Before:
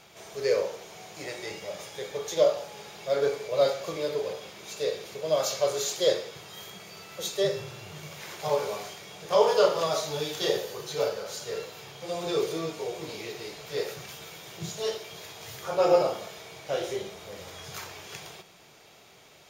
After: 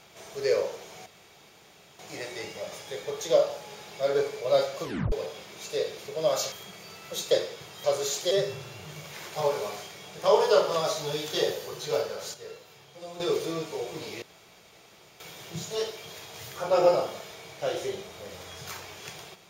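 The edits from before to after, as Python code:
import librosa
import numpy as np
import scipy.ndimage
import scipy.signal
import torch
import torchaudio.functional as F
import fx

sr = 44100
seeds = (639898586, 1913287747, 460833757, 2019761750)

y = fx.edit(x, sr, fx.insert_room_tone(at_s=1.06, length_s=0.93),
    fx.tape_stop(start_s=3.91, length_s=0.28),
    fx.swap(start_s=5.59, length_s=0.47, other_s=6.59, other_length_s=0.79),
    fx.clip_gain(start_s=11.41, length_s=0.86, db=-8.5),
    fx.room_tone_fill(start_s=13.29, length_s=0.98), tone=tone)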